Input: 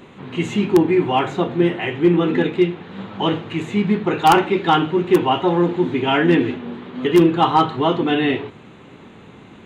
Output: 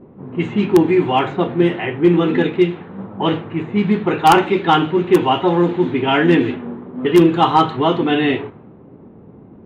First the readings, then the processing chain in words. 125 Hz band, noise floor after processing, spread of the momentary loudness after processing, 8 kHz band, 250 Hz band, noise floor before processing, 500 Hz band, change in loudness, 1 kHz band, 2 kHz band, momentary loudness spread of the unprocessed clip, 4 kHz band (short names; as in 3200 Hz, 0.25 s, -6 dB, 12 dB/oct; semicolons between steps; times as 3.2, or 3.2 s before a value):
+2.0 dB, -43 dBFS, 11 LU, +1.0 dB, +2.0 dB, -43 dBFS, +2.0 dB, +2.0 dB, +2.0 dB, +1.5 dB, 10 LU, +1.0 dB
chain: low-pass opened by the level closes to 530 Hz, open at -11 dBFS; gain +2 dB